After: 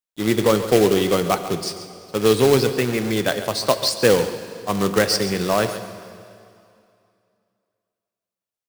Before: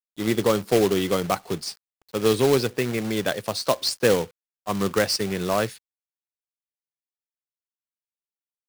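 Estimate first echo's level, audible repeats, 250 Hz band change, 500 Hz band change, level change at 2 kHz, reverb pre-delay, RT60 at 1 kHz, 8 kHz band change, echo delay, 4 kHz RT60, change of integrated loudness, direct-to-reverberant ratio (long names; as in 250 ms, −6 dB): −13.5 dB, 1, +4.0 dB, +4.0 dB, +4.0 dB, 5 ms, 2.5 s, +4.0 dB, 138 ms, 2.3 s, +4.0 dB, 8.5 dB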